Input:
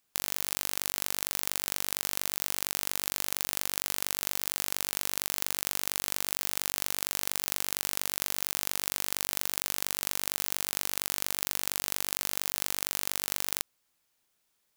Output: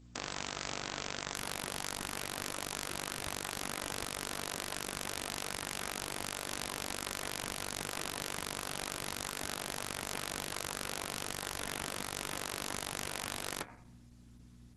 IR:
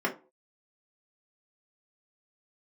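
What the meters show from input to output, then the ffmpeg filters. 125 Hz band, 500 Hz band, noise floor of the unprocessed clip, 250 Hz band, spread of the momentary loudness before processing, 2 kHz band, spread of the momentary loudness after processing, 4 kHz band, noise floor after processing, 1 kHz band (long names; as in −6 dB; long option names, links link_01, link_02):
+2.0 dB, +1.5 dB, −76 dBFS, +2.0 dB, 0 LU, −2.5 dB, 1 LU, −5.0 dB, −56 dBFS, 0.0 dB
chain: -filter_complex "[0:a]highshelf=frequency=7400:gain=-2.5,bandreject=frequency=66.1:width_type=h:width=4,bandreject=frequency=132.2:width_type=h:width=4,bandreject=frequency=198.3:width_type=h:width=4,bandreject=frequency=264.4:width_type=h:width=4,bandreject=frequency=330.5:width_type=h:width=4,bandreject=frequency=396.6:width_type=h:width=4,bandreject=frequency=462.7:width_type=h:width=4,bandreject=frequency=528.8:width_type=h:width=4,bandreject=frequency=594.9:width_type=h:width=4,bandreject=frequency=661:width_type=h:width=4,bandreject=frequency=727.1:width_type=h:width=4,bandreject=frequency=793.2:width_type=h:width=4,bandreject=frequency=859.3:width_type=h:width=4,bandreject=frequency=925.4:width_type=h:width=4,bandreject=frequency=991.5:width_type=h:width=4,bandreject=frequency=1057.6:width_type=h:width=4,bandreject=frequency=1123.7:width_type=h:width=4,bandreject=frequency=1189.8:width_type=h:width=4,bandreject=frequency=1255.9:width_type=h:width=4,bandreject=frequency=1322:width_type=h:width=4,bandreject=frequency=1388.1:width_type=h:width=4,bandreject=frequency=1454.2:width_type=h:width=4,bandreject=frequency=1520.3:width_type=h:width=4,bandreject=frequency=1586.4:width_type=h:width=4,bandreject=frequency=1652.5:width_type=h:width=4,bandreject=frequency=1718.6:width_type=h:width=4,bandreject=frequency=1784.7:width_type=h:width=4,bandreject=frequency=1850.8:width_type=h:width=4,bandreject=frequency=1916.9:width_type=h:width=4,bandreject=frequency=1983:width_type=h:width=4,bandreject=frequency=2049.1:width_type=h:width=4,bandreject=frequency=2115.2:width_type=h:width=4,bandreject=frequency=2181.3:width_type=h:width=4,bandreject=frequency=2247.4:width_type=h:width=4,bandreject=frequency=2313.5:width_type=h:width=4,bandreject=frequency=2379.6:width_type=h:width=4,bandreject=frequency=2445.7:width_type=h:width=4,bandreject=frequency=2511.8:width_type=h:width=4,alimiter=limit=-14.5dB:level=0:latency=1:release=82,aeval=exprs='val(0)+0.000891*(sin(2*PI*60*n/s)+sin(2*PI*2*60*n/s)/2+sin(2*PI*3*60*n/s)/3+sin(2*PI*4*60*n/s)/4+sin(2*PI*5*60*n/s)/5)':channel_layout=same,asplit=2[link_01][link_02];[1:a]atrim=start_sample=2205,asetrate=27342,aresample=44100[link_03];[link_02][link_03]afir=irnorm=-1:irlink=0,volume=-15.5dB[link_04];[link_01][link_04]amix=inputs=2:normalize=0,volume=6dB" -ar 48000 -c:a libopus -b:a 12k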